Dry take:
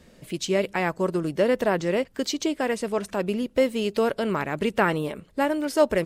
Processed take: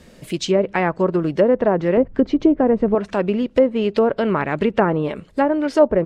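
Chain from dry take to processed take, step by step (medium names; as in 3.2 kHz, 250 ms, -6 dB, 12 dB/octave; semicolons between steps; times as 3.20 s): 1.97–2.95 s: tilt EQ -3 dB/octave; low-pass that closes with the level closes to 960 Hz, closed at -18 dBFS; trim +6.5 dB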